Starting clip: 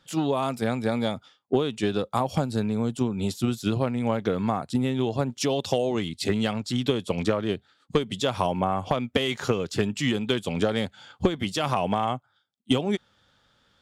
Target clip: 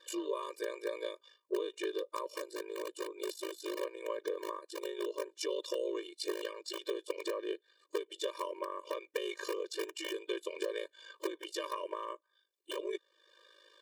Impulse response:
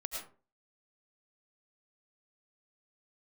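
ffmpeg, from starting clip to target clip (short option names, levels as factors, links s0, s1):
-filter_complex "[0:a]highpass=f=46:w=0.5412,highpass=f=46:w=1.3066,lowshelf=f=82:g=11.5,acrossover=split=130[s0][s1];[s1]acompressor=threshold=0.00316:ratio=2[s2];[s0][s2]amix=inputs=2:normalize=0,aeval=exprs='val(0)*sin(2*PI*26*n/s)':c=same,asplit=2[s3][s4];[s4]aeval=exprs='(mod(20*val(0)+1,2)-1)/20':c=same,volume=0.316[s5];[s3][s5]amix=inputs=2:normalize=0,afftfilt=real='re*eq(mod(floor(b*sr/1024/310),2),1)':imag='im*eq(mod(floor(b*sr/1024/310),2),1)':win_size=1024:overlap=0.75,volume=2.11"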